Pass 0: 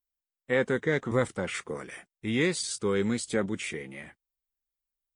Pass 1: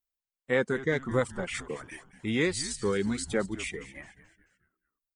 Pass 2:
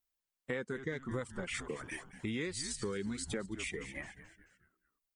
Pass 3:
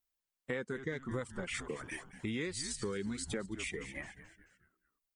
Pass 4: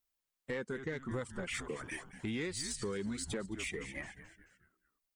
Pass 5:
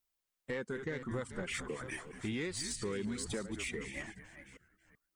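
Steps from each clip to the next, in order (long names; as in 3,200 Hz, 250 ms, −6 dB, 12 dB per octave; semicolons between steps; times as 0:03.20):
reverb reduction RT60 1.4 s; echo with shifted repeats 217 ms, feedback 43%, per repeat −130 Hz, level −15 dB
dynamic equaliser 740 Hz, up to −5 dB, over −44 dBFS, Q 1.7; downward compressor 5 to 1, threshold −38 dBFS, peak gain reduction 14.5 dB; level +2 dB
no processing that can be heard
soft clipping −29.5 dBFS, distortion −19 dB; level +1 dB
delay that plays each chunk backwards 381 ms, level −11.5 dB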